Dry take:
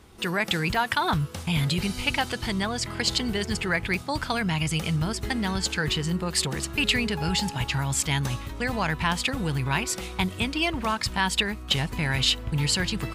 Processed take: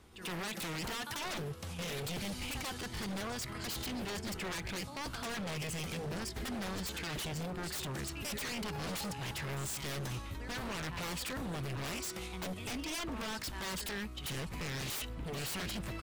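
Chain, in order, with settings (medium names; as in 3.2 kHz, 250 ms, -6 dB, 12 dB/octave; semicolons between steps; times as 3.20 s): tempo 0.82×; pre-echo 92 ms -15 dB; wavefolder -26.5 dBFS; trim -7.5 dB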